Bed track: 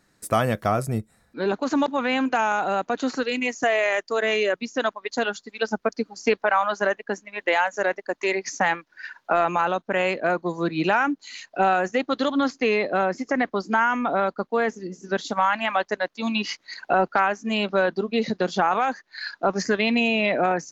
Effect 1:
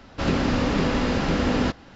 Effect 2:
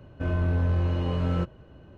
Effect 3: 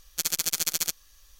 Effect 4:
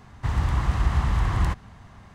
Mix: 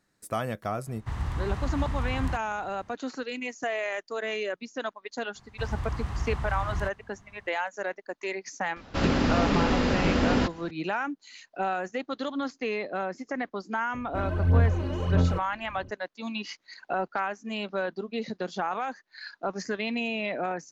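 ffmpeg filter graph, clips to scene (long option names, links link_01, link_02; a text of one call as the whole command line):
ffmpeg -i bed.wav -i cue0.wav -i cue1.wav -i cue2.wav -i cue3.wav -filter_complex "[4:a]asplit=2[link_01][link_02];[0:a]volume=-9dB[link_03];[2:a]aphaser=in_gain=1:out_gain=1:delay=3.6:decay=0.62:speed=1.6:type=sinusoidal[link_04];[link_01]atrim=end=2.14,asetpts=PTS-STARTPTS,volume=-7.5dB,afade=type=in:duration=0.05,afade=type=out:start_time=2.09:duration=0.05,adelay=830[link_05];[link_02]atrim=end=2.14,asetpts=PTS-STARTPTS,volume=-9dB,afade=type=in:duration=0.004:curve=hsin,afade=type=out:start_time=2.136:duration=0.004:curve=hsin,adelay=5350[link_06];[1:a]atrim=end=1.95,asetpts=PTS-STARTPTS,volume=-1.5dB,afade=type=in:duration=0.004:curve=hsin,afade=type=out:start_time=1.946:duration=0.004:curve=hsin,adelay=8760[link_07];[link_04]atrim=end=1.97,asetpts=PTS-STARTPTS,volume=-3.5dB,afade=type=in:duration=0.004:curve=hsin,afade=type=out:start_time=1.966:duration=0.004:curve=hsin,adelay=13940[link_08];[link_03][link_05][link_06][link_07][link_08]amix=inputs=5:normalize=0" out.wav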